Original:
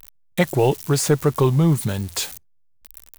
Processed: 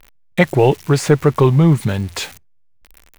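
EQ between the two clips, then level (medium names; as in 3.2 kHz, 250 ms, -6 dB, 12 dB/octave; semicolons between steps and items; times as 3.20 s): low-pass 2.8 kHz 6 dB/octave; peaking EQ 2.2 kHz +4.5 dB 0.86 oct; +5.0 dB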